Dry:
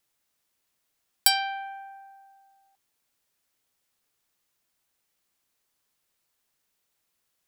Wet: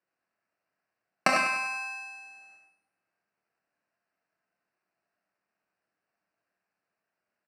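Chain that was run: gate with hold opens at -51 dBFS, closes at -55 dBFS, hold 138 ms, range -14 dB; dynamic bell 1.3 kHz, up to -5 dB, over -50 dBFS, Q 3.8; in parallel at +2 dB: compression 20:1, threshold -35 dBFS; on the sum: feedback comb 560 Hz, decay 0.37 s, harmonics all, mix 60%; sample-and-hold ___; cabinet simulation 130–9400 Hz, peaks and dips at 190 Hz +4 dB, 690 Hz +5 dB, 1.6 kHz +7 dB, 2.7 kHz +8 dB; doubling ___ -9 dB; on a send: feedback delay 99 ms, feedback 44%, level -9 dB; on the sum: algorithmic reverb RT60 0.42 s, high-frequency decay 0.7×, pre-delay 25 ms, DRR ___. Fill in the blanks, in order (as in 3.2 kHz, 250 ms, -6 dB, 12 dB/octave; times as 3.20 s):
13×, 26 ms, 3 dB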